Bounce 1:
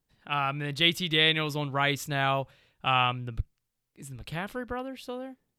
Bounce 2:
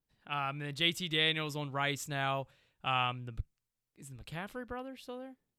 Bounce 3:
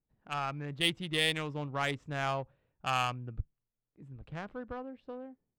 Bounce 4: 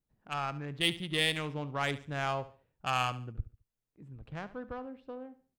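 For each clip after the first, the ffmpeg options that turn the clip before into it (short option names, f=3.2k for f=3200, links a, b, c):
-af "adynamicequalizer=threshold=0.00282:dfrequency=7600:dqfactor=2.2:tfrequency=7600:tqfactor=2.2:attack=5:release=100:ratio=0.375:range=3:mode=boostabove:tftype=bell,volume=-7dB"
-af "adynamicsmooth=sensitivity=3:basefreq=1.1k,volume=1.5dB"
-af "aecho=1:1:71|142|213:0.158|0.0507|0.0162"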